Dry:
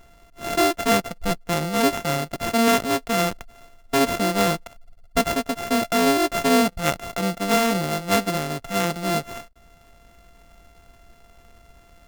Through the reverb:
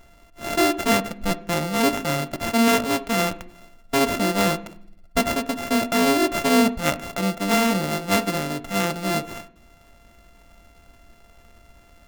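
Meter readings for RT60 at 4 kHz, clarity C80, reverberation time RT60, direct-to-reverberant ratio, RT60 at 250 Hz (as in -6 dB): 0.80 s, 21.0 dB, 0.60 s, 10.0 dB, 1.0 s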